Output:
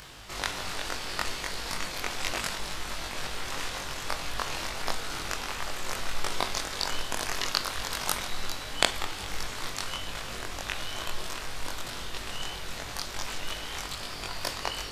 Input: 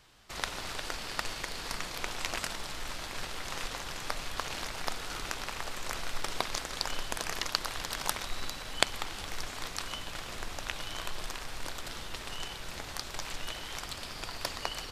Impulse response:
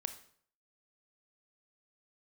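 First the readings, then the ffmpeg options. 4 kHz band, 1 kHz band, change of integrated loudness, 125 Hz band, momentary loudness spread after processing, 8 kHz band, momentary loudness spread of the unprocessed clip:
+3.5 dB, +3.5 dB, +3.5 dB, +3.5 dB, 7 LU, +3.5 dB, 7 LU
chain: -filter_complex "[0:a]acompressor=mode=upward:threshold=-40dB:ratio=2.5,asplit=2[link_01][link_02];[1:a]atrim=start_sample=2205,asetrate=74970,aresample=44100,adelay=21[link_03];[link_02][link_03]afir=irnorm=-1:irlink=0,volume=7dB[link_04];[link_01][link_04]amix=inputs=2:normalize=0"

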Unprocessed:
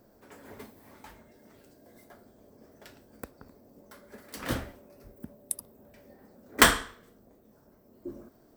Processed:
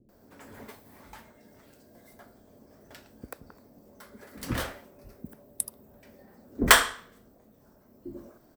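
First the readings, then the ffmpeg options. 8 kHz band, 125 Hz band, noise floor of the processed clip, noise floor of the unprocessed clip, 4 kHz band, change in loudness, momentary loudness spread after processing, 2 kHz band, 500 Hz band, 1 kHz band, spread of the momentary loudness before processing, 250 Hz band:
+2.0 dB, +2.0 dB, −60 dBFS, −61 dBFS, +2.0 dB, +1.5 dB, 17 LU, +2.0 dB, 0.0 dB, +2.0 dB, 24 LU, +0.5 dB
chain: -filter_complex "[0:a]acrossover=split=390[link_01][link_02];[link_02]adelay=90[link_03];[link_01][link_03]amix=inputs=2:normalize=0,volume=2dB"

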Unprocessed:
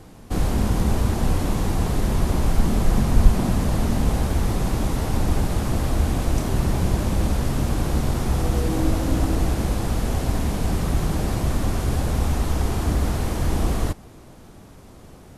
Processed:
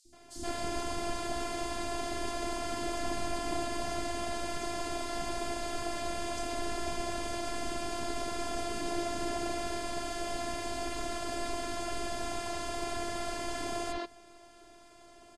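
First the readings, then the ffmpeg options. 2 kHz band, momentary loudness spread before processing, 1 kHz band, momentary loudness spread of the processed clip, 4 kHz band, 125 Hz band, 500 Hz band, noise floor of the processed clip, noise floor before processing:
−4.5 dB, 3 LU, −5.0 dB, 2 LU, −3.5 dB, −26.5 dB, −6.0 dB, −56 dBFS, −45 dBFS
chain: -filter_complex "[0:a]highpass=frequency=120:width=0.5412,highpass=frequency=120:width=1.3066,equalizer=frequency=130:width_type=q:width=4:gain=6,equalizer=frequency=300:width_type=q:width=4:gain=-6,equalizer=frequency=460:width_type=q:width=4:gain=3,equalizer=frequency=1100:width_type=q:width=4:gain=-5,equalizer=frequency=4500:width_type=q:width=4:gain=5,lowpass=frequency=9100:width=0.5412,lowpass=frequency=9100:width=1.3066,afftfilt=real='hypot(re,im)*cos(PI*b)':imag='0':win_size=512:overlap=0.75,acrossover=split=290|4800[link_01][link_02][link_03];[link_01]adelay=50[link_04];[link_02]adelay=130[link_05];[link_04][link_05][link_03]amix=inputs=3:normalize=0"

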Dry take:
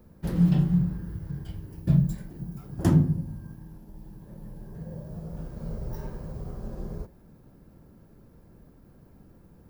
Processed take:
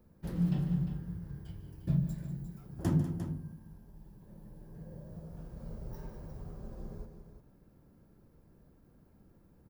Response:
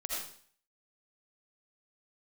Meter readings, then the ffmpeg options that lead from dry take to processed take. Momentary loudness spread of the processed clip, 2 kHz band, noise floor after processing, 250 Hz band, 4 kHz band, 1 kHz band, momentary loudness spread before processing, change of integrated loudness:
22 LU, −8.5 dB, −63 dBFS, −9.0 dB, can't be measured, −8.5 dB, 23 LU, −8.5 dB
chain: -af "aecho=1:1:147|195|351:0.211|0.224|0.299,volume=-9dB"

